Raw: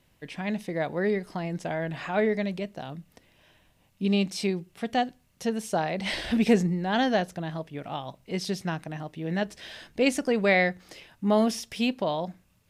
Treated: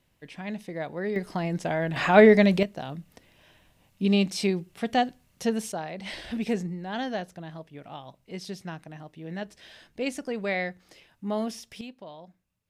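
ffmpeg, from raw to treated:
-af "asetnsamples=n=441:p=0,asendcmd='1.16 volume volume 3dB;1.96 volume volume 10dB;2.63 volume volume 2dB;5.72 volume volume -7dB;11.81 volume volume -16dB',volume=-4.5dB"

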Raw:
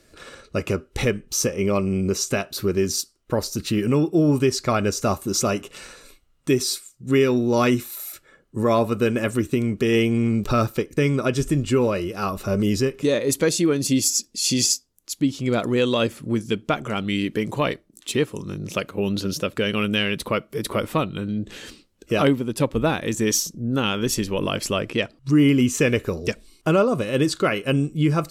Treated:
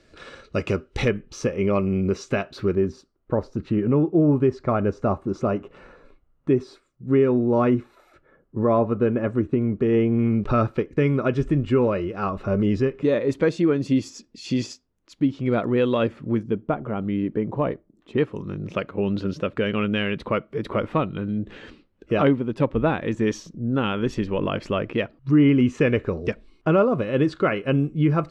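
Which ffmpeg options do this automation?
-af "asetnsamples=n=441:p=0,asendcmd='1.08 lowpass f 2500;2.75 lowpass f 1200;10.19 lowpass f 2000;16.43 lowpass f 1000;18.18 lowpass f 2100',lowpass=4.6k"

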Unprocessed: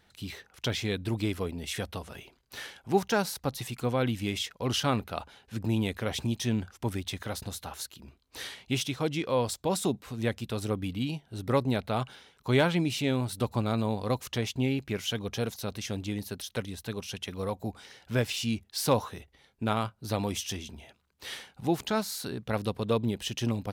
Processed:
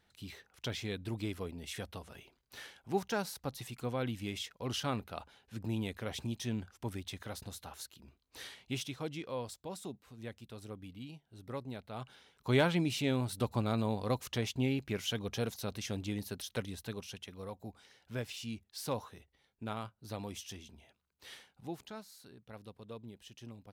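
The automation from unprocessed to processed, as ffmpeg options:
-af "volume=3.5dB,afade=t=out:st=8.66:d=1.09:silence=0.421697,afade=t=in:st=11.91:d=0.59:silence=0.266073,afade=t=out:st=16.73:d=0.58:silence=0.421697,afade=t=out:st=21.35:d=0.71:silence=0.375837"

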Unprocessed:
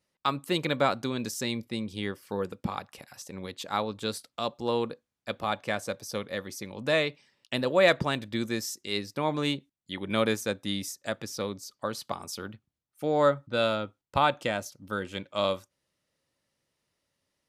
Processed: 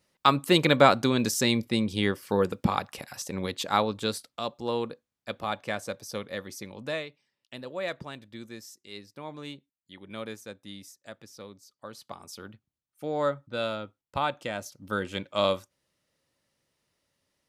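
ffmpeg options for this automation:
-af "volume=21.5dB,afade=t=out:st=3.45:d=0.98:silence=0.375837,afade=t=out:st=6.67:d=0.4:silence=0.298538,afade=t=in:st=11.76:d=0.76:silence=0.421697,afade=t=in:st=14.49:d=0.46:silence=0.446684"

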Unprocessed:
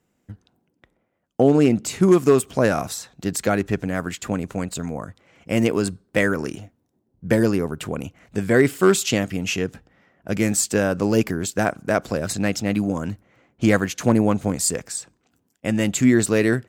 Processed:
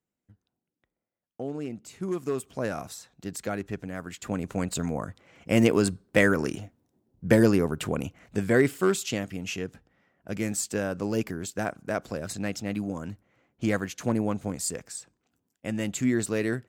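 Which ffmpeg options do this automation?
-af "volume=-1dB,afade=t=in:st=1.86:d=0.92:silence=0.421697,afade=t=in:st=4.08:d=0.67:silence=0.316228,afade=t=out:st=7.98:d=0.99:silence=0.398107"

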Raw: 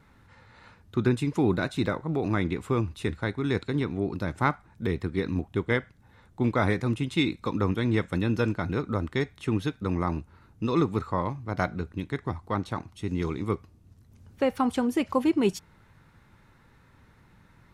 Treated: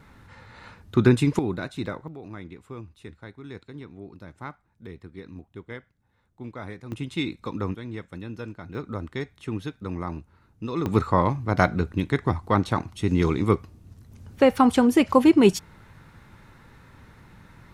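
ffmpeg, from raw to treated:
-af "asetnsamples=n=441:p=0,asendcmd='1.39 volume volume -4dB;2.08 volume volume -13dB;6.92 volume volume -3dB;7.75 volume volume -10.5dB;8.75 volume volume -4dB;10.86 volume volume 7.5dB',volume=6.5dB"

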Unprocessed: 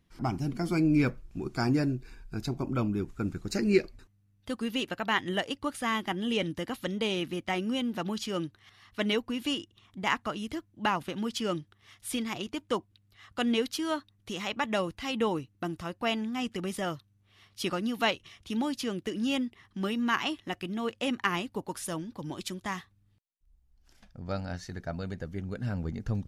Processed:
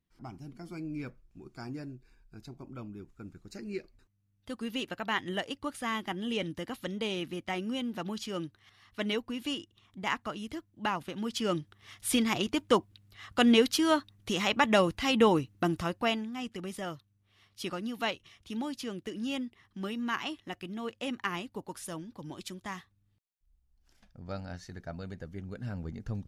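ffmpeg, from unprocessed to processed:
-af "volume=5.5dB,afade=t=in:st=3.84:d=0.89:silence=0.298538,afade=t=in:st=11.15:d=0.95:silence=0.354813,afade=t=out:st=15.8:d=0.46:silence=0.298538"

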